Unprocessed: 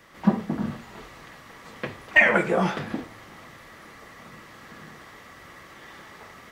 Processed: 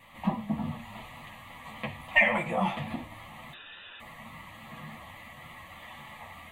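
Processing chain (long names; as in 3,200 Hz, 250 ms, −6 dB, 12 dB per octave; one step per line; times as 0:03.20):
in parallel at −0.5 dB: downward compressor, threshold −33 dBFS, peak gain reduction 20 dB
on the sum: phaser with its sweep stopped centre 1,500 Hz, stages 6
0:03.53–0:04.00: voice inversion scrambler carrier 3,700 Hz
pitch vibrato 3.5 Hz 24 cents
multi-voice chorus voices 4, 0.76 Hz, delay 11 ms, depth 3 ms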